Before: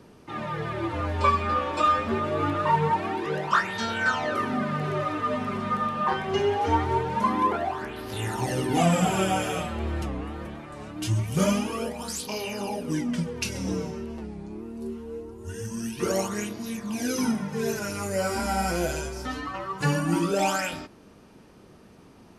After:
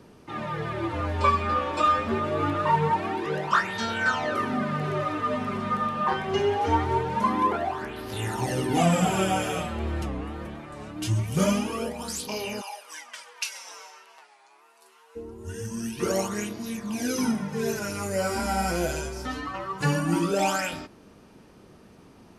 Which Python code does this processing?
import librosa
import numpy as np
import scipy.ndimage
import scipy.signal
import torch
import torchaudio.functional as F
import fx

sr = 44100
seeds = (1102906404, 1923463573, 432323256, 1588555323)

y = fx.highpass(x, sr, hz=850.0, slope=24, at=(12.6, 15.15), fade=0.02)